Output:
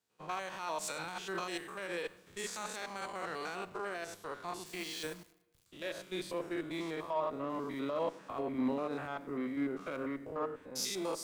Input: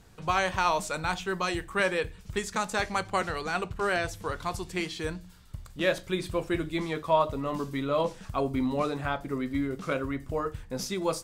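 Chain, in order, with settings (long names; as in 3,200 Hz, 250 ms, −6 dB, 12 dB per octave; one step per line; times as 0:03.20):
spectrum averaged block by block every 100 ms
high-pass filter 260 Hz 12 dB per octave
in parallel at −3 dB: downward compressor, threshold −40 dBFS, peak gain reduction 18.5 dB
on the sum: brickwall limiter −24 dBFS, peak gain reduction 11.5 dB
harmonic generator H 3 −26 dB, 5 −37 dB, 6 −28 dB, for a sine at −24 dBFS
0:04.66–0:05.66: bit-depth reduction 8 bits, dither none
background noise white −72 dBFS
on a send at −18.5 dB: convolution reverb RT60 3.6 s, pre-delay 46 ms
on the sum: multiband upward and downward expander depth 100%
level −3.5 dB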